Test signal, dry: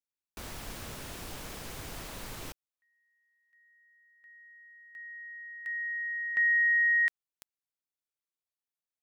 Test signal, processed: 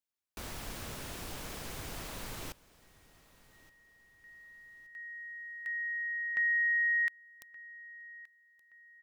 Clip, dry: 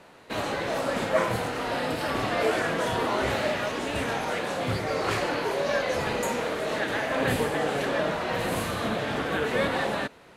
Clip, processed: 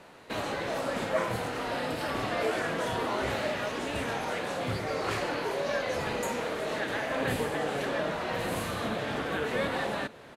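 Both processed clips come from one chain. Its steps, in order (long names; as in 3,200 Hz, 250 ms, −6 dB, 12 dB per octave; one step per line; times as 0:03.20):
in parallel at +0.5 dB: downward compressor, threshold −35 dBFS
on the sum: repeating echo 1,173 ms, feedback 37%, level −21 dB
level −6.5 dB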